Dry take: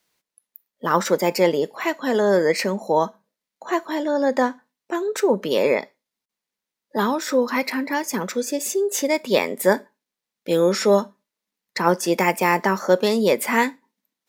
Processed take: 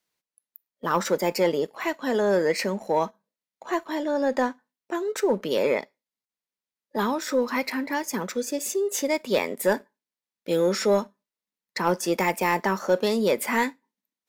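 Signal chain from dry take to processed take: sample leveller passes 1; gain -7.5 dB

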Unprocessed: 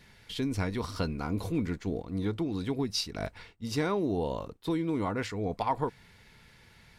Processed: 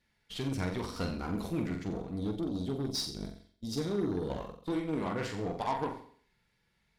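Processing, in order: gate -43 dBFS, range -15 dB; spectral gain 2.17–4.29, 490–3100 Hz -14 dB; flutter echo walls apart 7.6 m, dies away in 0.52 s; added harmonics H 8 -23 dB, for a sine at -16.5 dBFS; flange 0.84 Hz, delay 3.3 ms, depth 3.3 ms, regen -55%

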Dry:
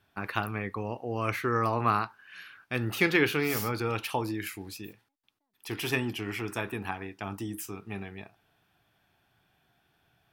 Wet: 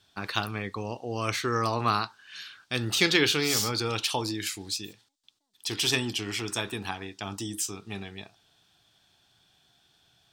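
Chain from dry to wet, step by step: band shelf 5300 Hz +14 dB

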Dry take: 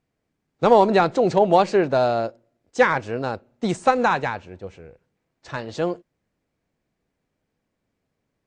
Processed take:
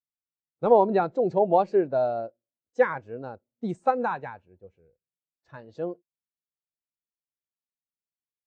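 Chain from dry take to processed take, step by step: spectral expander 1.5:1; gain -3 dB

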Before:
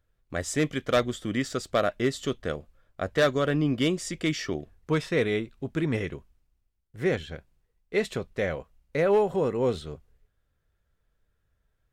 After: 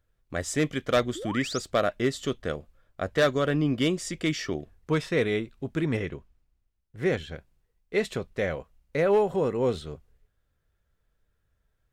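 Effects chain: 1.15–1.6 painted sound rise 290–7300 Hz -37 dBFS; 5.97–7.03 high shelf 6000 Hz -8 dB

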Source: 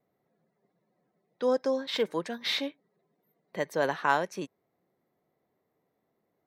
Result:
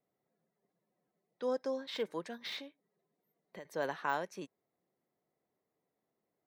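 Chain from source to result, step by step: de-esser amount 85%; bell 78 Hz -2.5 dB 2.1 oct; 2.57–3.65 compressor 12:1, threshold -37 dBFS, peak gain reduction 12.5 dB; gain -8 dB

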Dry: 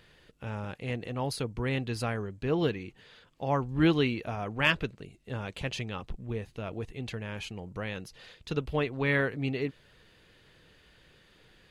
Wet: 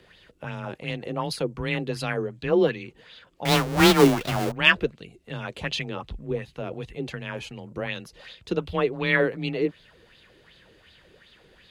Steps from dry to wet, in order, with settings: 3.45–4.52 half-waves squared off; frequency shift +22 Hz; LFO bell 2.7 Hz 340–4000 Hz +12 dB; gain +1 dB

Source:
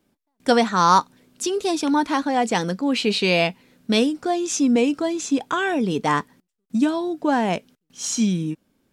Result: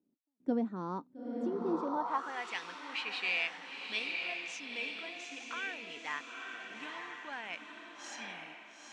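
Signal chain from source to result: diffused feedback echo 0.903 s, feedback 43%, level -3 dB; band-pass sweep 280 Hz -> 2300 Hz, 1.64–2.47; gain -8 dB

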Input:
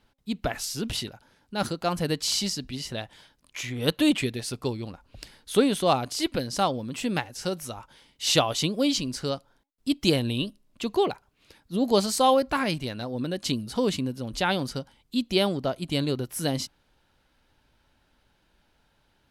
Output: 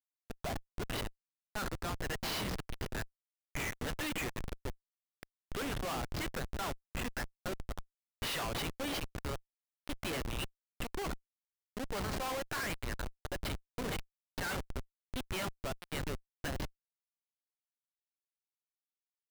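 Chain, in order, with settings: band-pass sweep 720 Hz -> 1800 Hz, 0.23–1; flange 0.85 Hz, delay 6.7 ms, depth 8.1 ms, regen -75%; Schmitt trigger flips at -45.5 dBFS; gain +10.5 dB

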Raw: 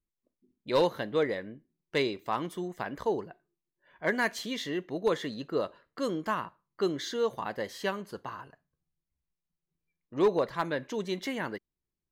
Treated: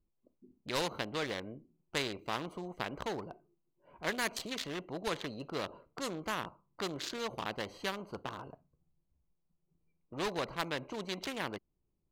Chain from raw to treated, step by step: Wiener smoothing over 25 samples; spectral compressor 2:1

